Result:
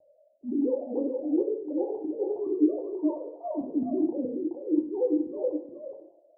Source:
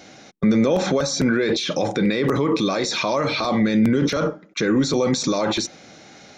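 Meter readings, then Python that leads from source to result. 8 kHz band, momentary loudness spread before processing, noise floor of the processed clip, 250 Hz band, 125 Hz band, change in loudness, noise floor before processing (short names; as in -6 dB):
under -40 dB, 5 LU, -63 dBFS, -7.5 dB, under -30 dB, -8.5 dB, -46 dBFS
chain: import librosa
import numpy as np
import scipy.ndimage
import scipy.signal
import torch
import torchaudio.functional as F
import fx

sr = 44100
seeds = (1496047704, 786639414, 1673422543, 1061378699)

y = fx.sine_speech(x, sr)
y = scipy.signal.sosfilt(scipy.signal.butter(16, 900.0, 'lowpass', fs=sr, output='sos'), y)
y = fx.dynamic_eq(y, sr, hz=530.0, q=1.8, threshold_db=-33.0, ratio=4.0, max_db=-5)
y = fx.auto_swell(y, sr, attack_ms=156.0)
y = fx.rotary(y, sr, hz=8.0)
y = y + 10.0 ** (-4.5 / 20.0) * np.pad(y, (int(422 * sr / 1000.0), 0))[:len(y)]
y = fx.rev_fdn(y, sr, rt60_s=0.74, lf_ratio=0.9, hf_ratio=0.45, size_ms=58.0, drr_db=1.5)
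y = F.gain(torch.from_numpy(y), -7.0).numpy()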